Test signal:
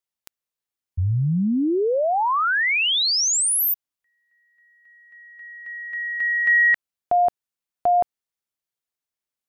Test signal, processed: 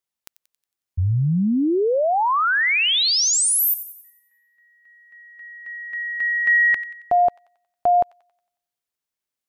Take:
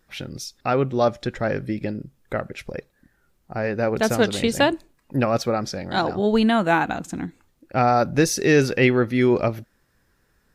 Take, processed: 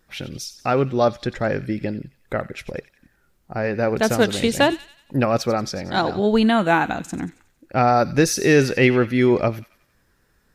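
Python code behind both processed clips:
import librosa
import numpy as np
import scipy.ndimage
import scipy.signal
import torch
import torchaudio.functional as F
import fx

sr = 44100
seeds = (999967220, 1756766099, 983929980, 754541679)

y = fx.echo_wet_highpass(x, sr, ms=91, feedback_pct=47, hz=2100.0, wet_db=-13.0)
y = y * 10.0 ** (1.5 / 20.0)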